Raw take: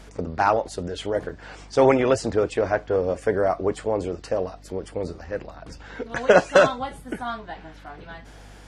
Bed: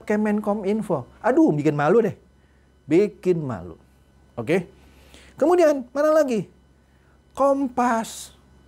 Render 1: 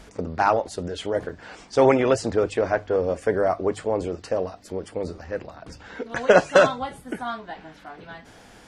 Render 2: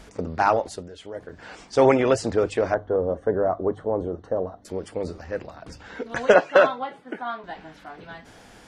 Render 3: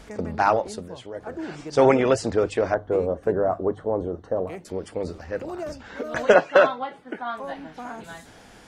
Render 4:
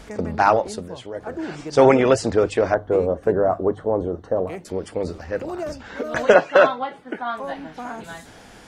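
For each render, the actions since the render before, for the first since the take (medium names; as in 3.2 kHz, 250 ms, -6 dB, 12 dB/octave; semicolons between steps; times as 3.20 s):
de-hum 50 Hz, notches 3
0.71–1.40 s: dip -10.5 dB, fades 0.14 s; 2.74–4.65 s: boxcar filter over 18 samples; 6.34–7.44 s: band-pass 290–3100 Hz
add bed -17 dB
trim +3.5 dB; peak limiter -2 dBFS, peak gain reduction 2.5 dB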